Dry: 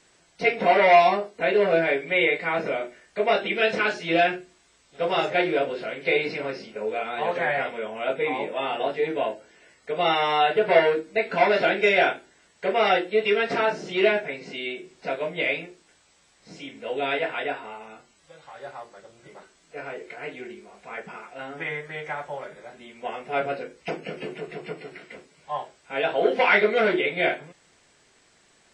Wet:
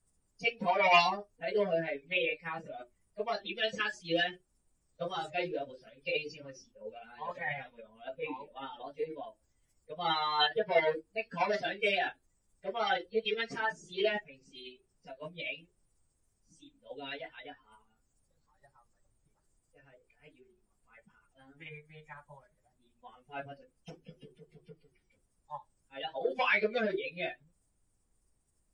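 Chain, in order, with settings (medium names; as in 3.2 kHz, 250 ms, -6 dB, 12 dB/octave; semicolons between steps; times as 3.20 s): expander on every frequency bin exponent 2; in parallel at -2.5 dB: peak limiter -18.5 dBFS, peak gain reduction 11.5 dB; on the sum: formant shift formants +2 st; added noise brown -66 dBFS; trim -8 dB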